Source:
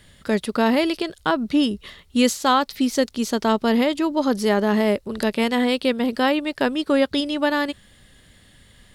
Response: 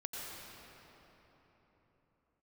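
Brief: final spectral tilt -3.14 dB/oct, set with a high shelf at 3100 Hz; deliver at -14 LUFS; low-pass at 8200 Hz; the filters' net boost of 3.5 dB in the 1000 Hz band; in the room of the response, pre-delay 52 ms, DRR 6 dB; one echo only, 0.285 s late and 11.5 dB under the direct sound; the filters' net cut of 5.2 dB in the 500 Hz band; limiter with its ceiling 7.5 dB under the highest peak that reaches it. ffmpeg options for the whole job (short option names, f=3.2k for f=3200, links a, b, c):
-filter_complex "[0:a]lowpass=8.2k,equalizer=f=500:t=o:g=-8.5,equalizer=f=1k:t=o:g=6,highshelf=f=3.1k:g=7.5,alimiter=limit=-12dB:level=0:latency=1,aecho=1:1:285:0.266,asplit=2[a][b];[1:a]atrim=start_sample=2205,adelay=52[c];[b][c]afir=irnorm=-1:irlink=0,volume=-7dB[d];[a][d]amix=inputs=2:normalize=0,volume=8dB"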